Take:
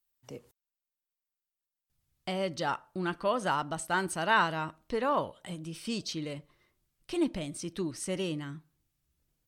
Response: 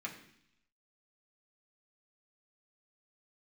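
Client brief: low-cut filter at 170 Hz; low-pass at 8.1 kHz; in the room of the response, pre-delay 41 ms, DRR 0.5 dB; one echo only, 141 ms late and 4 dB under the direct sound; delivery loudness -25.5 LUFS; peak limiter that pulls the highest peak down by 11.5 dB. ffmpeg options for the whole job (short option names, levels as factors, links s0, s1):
-filter_complex "[0:a]highpass=170,lowpass=8100,alimiter=limit=0.0668:level=0:latency=1,aecho=1:1:141:0.631,asplit=2[s0][s1];[1:a]atrim=start_sample=2205,adelay=41[s2];[s1][s2]afir=irnorm=-1:irlink=0,volume=0.891[s3];[s0][s3]amix=inputs=2:normalize=0,volume=2.11"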